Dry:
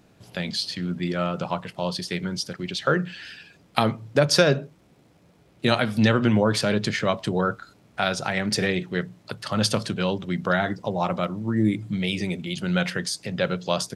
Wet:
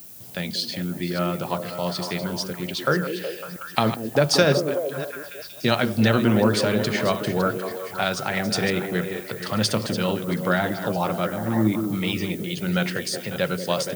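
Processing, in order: reverse delay 0.297 s, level -11 dB; delay with a stepping band-pass 0.185 s, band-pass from 330 Hz, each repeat 0.7 oct, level -3.5 dB; added noise violet -43 dBFS

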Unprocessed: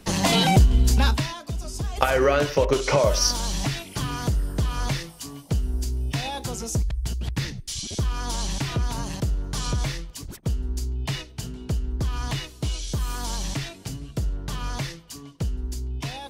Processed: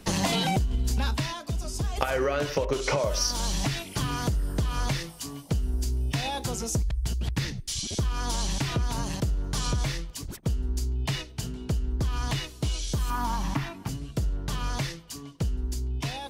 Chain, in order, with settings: 13.1–13.89 graphic EQ 250/500/1000/4000/8000 Hz +7/-8/+11/-6/-10 dB; compressor 12:1, threshold -22 dBFS, peak gain reduction 11.5 dB

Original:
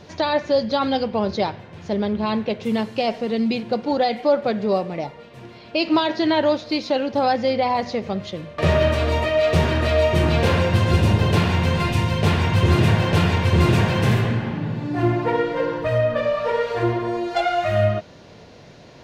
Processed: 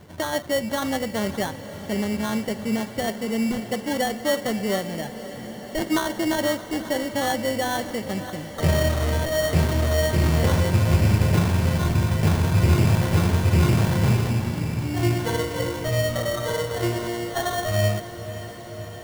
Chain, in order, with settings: tone controls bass +5 dB, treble -1 dB; sample-rate reducer 2500 Hz, jitter 0%; on a send: diffused feedback echo 0.56 s, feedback 76%, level -14 dB; on the sum: gain -5.5 dB

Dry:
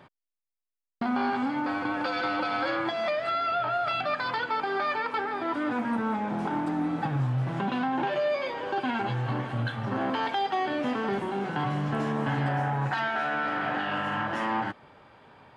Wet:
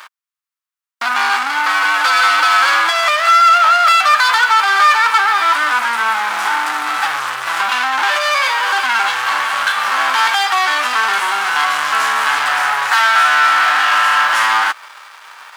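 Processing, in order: spectral whitening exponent 0.6; sample leveller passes 3; resonant high-pass 1200 Hz, resonance Q 2.2; gain +7 dB

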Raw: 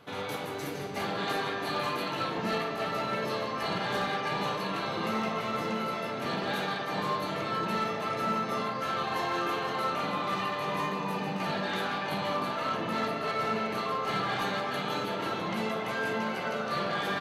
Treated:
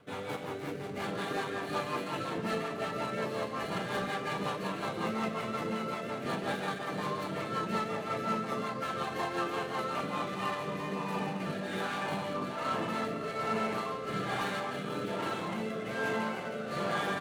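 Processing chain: median filter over 9 samples; rotary speaker horn 5.5 Hz, later 1.2 Hz, at 9.82

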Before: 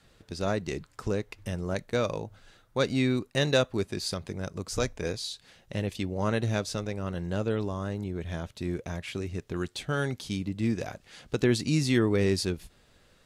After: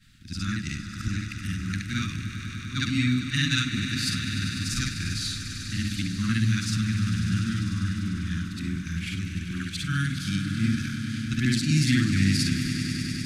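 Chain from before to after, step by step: short-time reversal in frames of 0.143 s; inverse Chebyshev band-stop 440–880 Hz, stop band 50 dB; on a send: swelling echo 99 ms, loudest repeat 5, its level -12.5 dB; on the sum: gain +7.5 dB

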